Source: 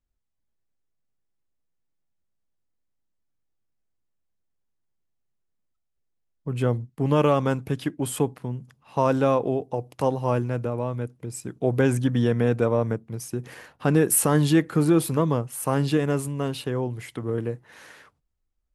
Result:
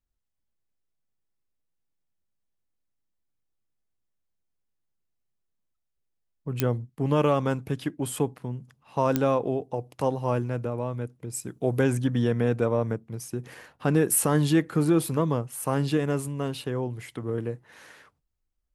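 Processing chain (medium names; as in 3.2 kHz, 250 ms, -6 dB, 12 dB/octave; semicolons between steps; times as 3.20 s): 11.33–11.84 s: treble shelf 7.1 kHz +9.5 dB; clicks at 6.60/9.16 s, -5 dBFS; trim -2.5 dB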